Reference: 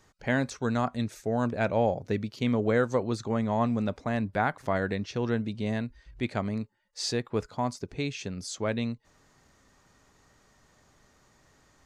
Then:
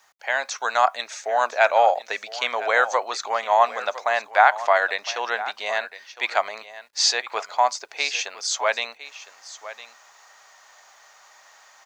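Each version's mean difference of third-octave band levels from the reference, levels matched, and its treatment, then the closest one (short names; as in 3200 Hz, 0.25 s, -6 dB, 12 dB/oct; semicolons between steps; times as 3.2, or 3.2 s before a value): 12.5 dB: AGC gain up to 8 dB; elliptic band-pass 710–6800 Hz, stop band 60 dB; requantised 12-bit, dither none; on a send: echo 1.009 s -15 dB; on the sum: gain +6 dB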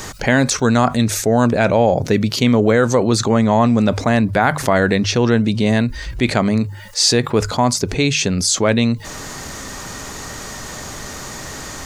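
4.0 dB: high shelf 4700 Hz +7.5 dB; notches 50/100/150 Hz; maximiser +15 dB; fast leveller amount 50%; gain -3.5 dB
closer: second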